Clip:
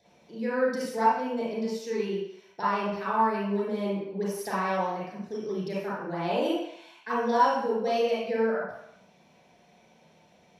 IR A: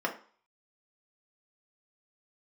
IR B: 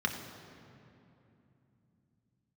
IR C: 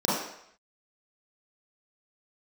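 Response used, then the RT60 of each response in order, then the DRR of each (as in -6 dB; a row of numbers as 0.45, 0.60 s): C; 0.45, 2.9, 0.70 s; -0.5, 2.5, -8.5 dB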